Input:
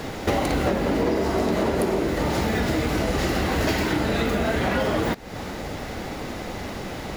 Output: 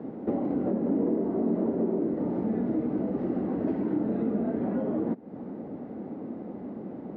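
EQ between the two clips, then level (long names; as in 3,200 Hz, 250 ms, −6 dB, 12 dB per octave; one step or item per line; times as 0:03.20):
four-pole ladder band-pass 280 Hz, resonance 40%
+7.0 dB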